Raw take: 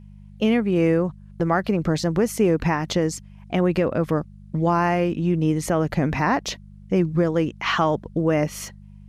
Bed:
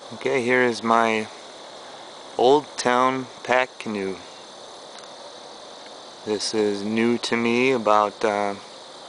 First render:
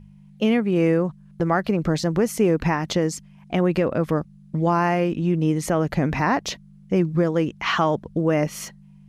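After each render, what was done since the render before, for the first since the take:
hum removal 50 Hz, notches 2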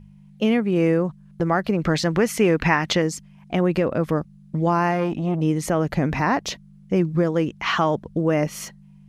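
0:01.79–0:03.02: parametric band 2,200 Hz +8.5 dB 2.1 octaves
0:04.91–0:05.41: saturating transformer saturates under 440 Hz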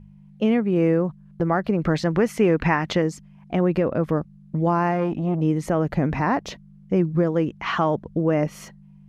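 high-shelf EQ 2,600 Hz −10.5 dB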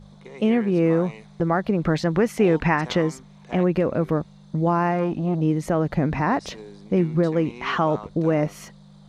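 mix in bed −20 dB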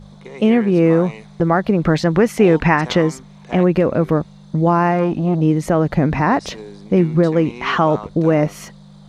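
level +6 dB

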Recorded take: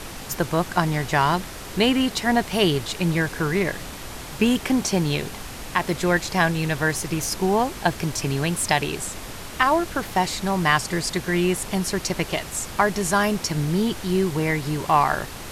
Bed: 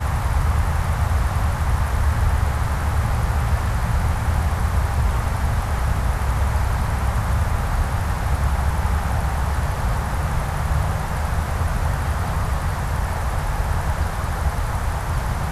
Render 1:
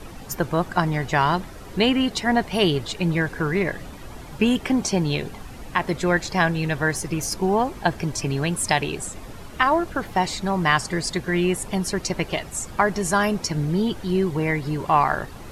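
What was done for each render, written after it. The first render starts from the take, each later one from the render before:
broadband denoise 11 dB, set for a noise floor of −36 dBFS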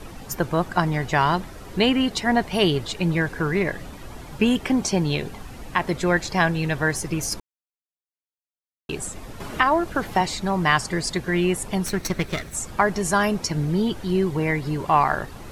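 0:07.40–0:08.89: silence
0:09.40–0:10.21: multiband upward and downward compressor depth 40%
0:11.86–0:12.54: lower of the sound and its delayed copy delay 0.5 ms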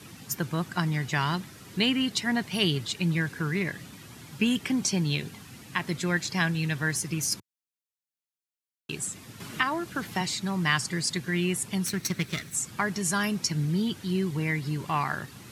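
high-pass filter 110 Hz 24 dB per octave
parametric band 630 Hz −14 dB 2.2 octaves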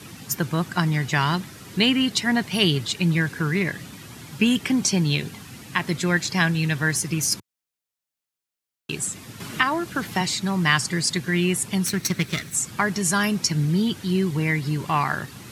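level +5.5 dB

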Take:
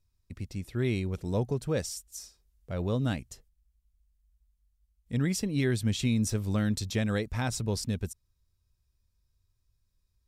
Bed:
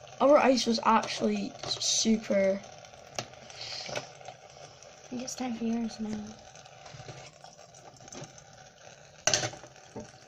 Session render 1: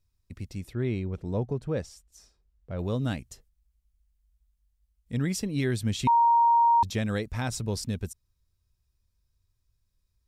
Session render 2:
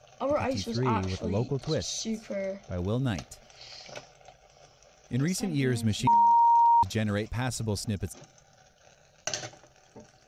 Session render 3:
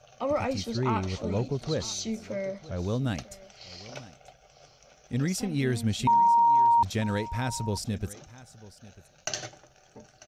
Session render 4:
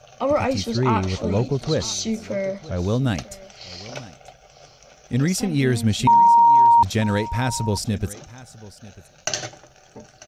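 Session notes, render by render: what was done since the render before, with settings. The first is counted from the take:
0:00.73–0:02.79: low-pass filter 1,600 Hz 6 dB per octave; 0:06.07–0:06.83: beep over 935 Hz −17 dBFS
mix in bed −7 dB
single-tap delay 945 ms −19 dB
level +7.5 dB

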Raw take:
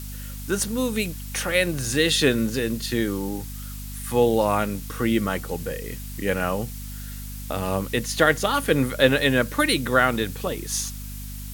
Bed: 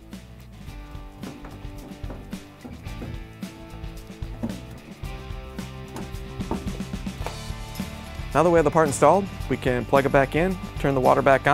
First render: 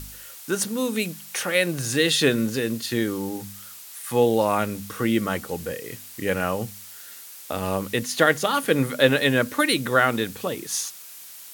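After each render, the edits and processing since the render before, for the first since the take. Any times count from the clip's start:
hum removal 50 Hz, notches 5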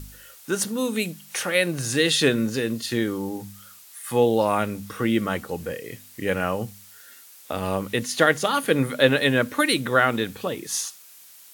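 noise reduction from a noise print 6 dB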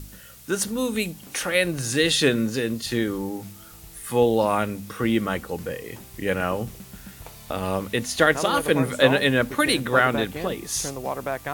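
mix in bed −11.5 dB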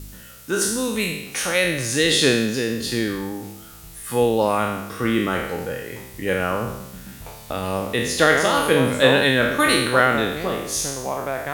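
peak hold with a decay on every bin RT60 0.88 s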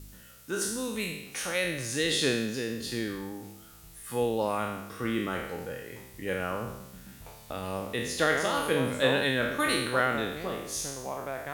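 level −9.5 dB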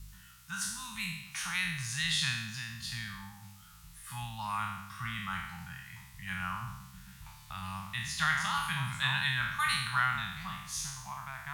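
elliptic band-stop filter 170–950 Hz, stop band 60 dB
high-shelf EQ 8,000 Hz −7.5 dB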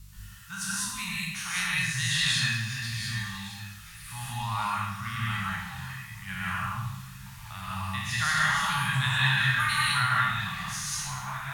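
feedback echo with a high-pass in the loop 1,161 ms, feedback 60%, high-pass 940 Hz, level −17 dB
reverb whose tail is shaped and stops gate 220 ms rising, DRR −4.5 dB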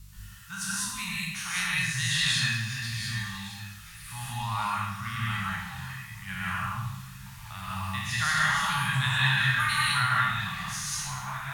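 0:07.58–0:08.07: log-companded quantiser 6 bits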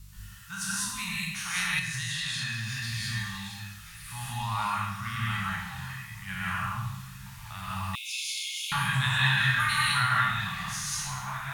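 0:01.79–0:02.88: downward compressor 5 to 1, threshold −29 dBFS
0:07.95–0:08.72: linear-phase brick-wall high-pass 2,100 Hz

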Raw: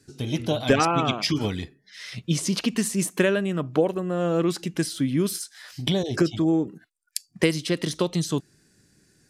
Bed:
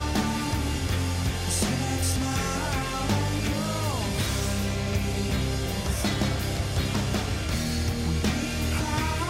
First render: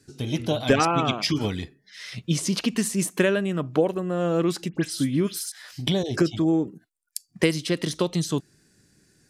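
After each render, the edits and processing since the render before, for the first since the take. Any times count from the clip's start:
0:04.69–0:05.52: all-pass dispersion highs, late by 77 ms, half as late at 2,900 Hz
0:06.69–0:07.29: parametric band 2,200 Hz −12 dB 2.4 octaves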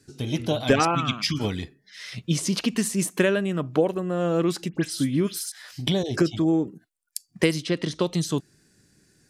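0:00.95–0:01.40: flat-topped bell 550 Hz −13.5 dB
0:07.62–0:08.02: high-frequency loss of the air 74 metres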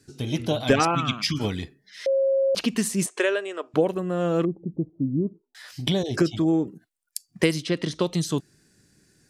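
0:02.06–0:02.55: beep over 541 Hz −18 dBFS
0:03.06–0:03.74: elliptic band-pass filter 400–8,600 Hz
0:04.45–0:05.55: Gaussian smoothing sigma 16 samples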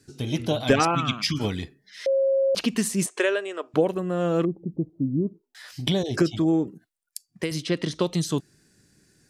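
0:06.65–0:07.51: fade out, to −9 dB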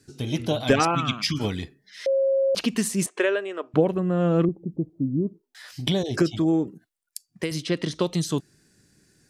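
0:03.06–0:04.49: bass and treble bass +7 dB, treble −9 dB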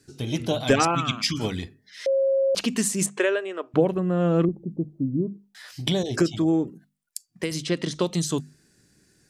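mains-hum notches 50/100/150/200/250 Hz
dynamic equaliser 7,400 Hz, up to +6 dB, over −50 dBFS, Q 2.2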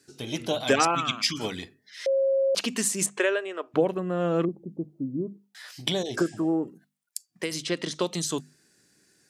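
high-pass filter 380 Hz 6 dB per octave
0:06.20–0:06.64: healed spectral selection 1,600–9,900 Hz both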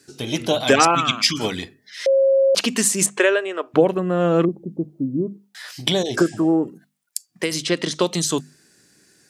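level +7.5 dB
brickwall limiter −1 dBFS, peak gain reduction 1.5 dB

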